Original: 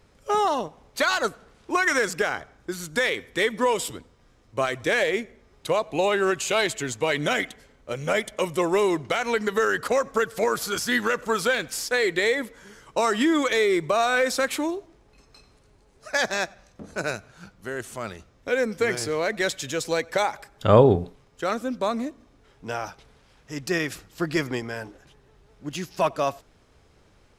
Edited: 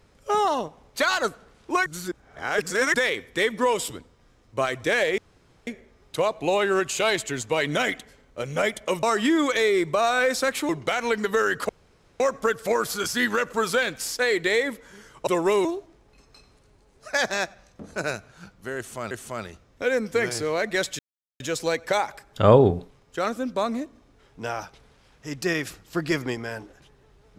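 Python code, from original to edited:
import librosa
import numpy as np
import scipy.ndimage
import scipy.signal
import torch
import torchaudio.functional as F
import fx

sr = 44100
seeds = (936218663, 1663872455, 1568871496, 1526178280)

y = fx.edit(x, sr, fx.reverse_span(start_s=1.86, length_s=1.08),
    fx.insert_room_tone(at_s=5.18, length_s=0.49),
    fx.swap(start_s=8.54, length_s=0.38, other_s=12.99, other_length_s=1.66),
    fx.insert_room_tone(at_s=9.92, length_s=0.51),
    fx.repeat(start_s=17.77, length_s=0.34, count=2),
    fx.insert_silence(at_s=19.65, length_s=0.41), tone=tone)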